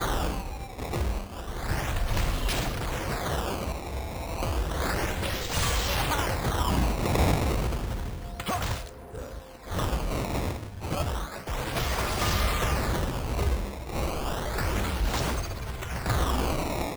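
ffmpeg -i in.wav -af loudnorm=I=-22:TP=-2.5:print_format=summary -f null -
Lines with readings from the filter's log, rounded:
Input Integrated:    -29.7 LUFS
Input True Peak:     -12.7 dBTP
Input LRA:             2.7 LU
Input Threshold:     -39.8 LUFS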